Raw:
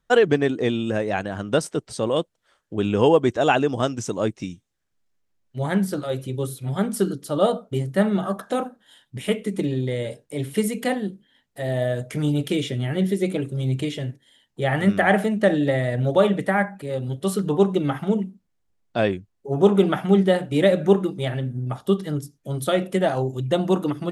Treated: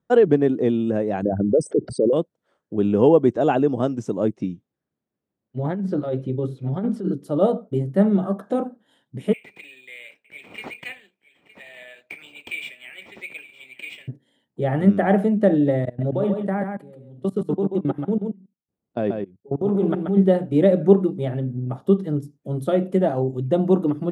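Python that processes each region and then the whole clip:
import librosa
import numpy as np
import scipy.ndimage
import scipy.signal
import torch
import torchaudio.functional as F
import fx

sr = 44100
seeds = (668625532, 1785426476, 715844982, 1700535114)

y = fx.chain(x, sr, fx.envelope_sharpen(power=3.0),
    fx.env_flatten(amount_pct=50), at=(1.22, 2.13))
y = fx.chain(y, sr, fx.over_compress(threshold_db=-25.0, ratio=-1.0),
    fx.lowpass(hz=4600.0, slope=12), at=(4.41, 7.13))
y = fx.chain(y, sr, fx.highpass_res(hz=2400.0, q=15.0),
    fx.echo_single(ms=914, db=-17.0),
    fx.resample_linear(factor=4), at=(9.33, 14.08))
y = fx.chain(y, sr, fx.level_steps(step_db=23),
    fx.echo_single(ms=134, db=-5.5), at=(15.85, 20.17))
y = scipy.signal.sosfilt(scipy.signal.butter(2, 160.0, 'highpass', fs=sr, output='sos'), y)
y = fx.tilt_shelf(y, sr, db=10.0, hz=970.0)
y = y * 10.0 ** (-4.0 / 20.0)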